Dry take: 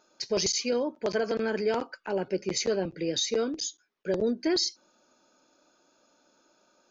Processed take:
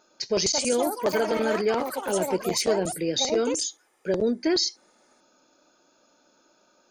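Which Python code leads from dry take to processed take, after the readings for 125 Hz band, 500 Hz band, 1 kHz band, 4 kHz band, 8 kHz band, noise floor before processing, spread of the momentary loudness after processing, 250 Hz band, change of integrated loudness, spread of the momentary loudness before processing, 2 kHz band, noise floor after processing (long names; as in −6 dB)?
+3.0 dB, +4.0 dB, +7.5 dB, +3.0 dB, can't be measured, −68 dBFS, 5 LU, +3.5 dB, +4.0 dB, 6 LU, +4.0 dB, −64 dBFS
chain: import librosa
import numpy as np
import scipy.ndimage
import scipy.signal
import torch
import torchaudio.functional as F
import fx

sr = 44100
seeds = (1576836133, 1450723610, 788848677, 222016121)

y = fx.echo_pitch(x, sr, ms=319, semitones=6, count=3, db_per_echo=-6.0)
y = y * librosa.db_to_amplitude(3.0)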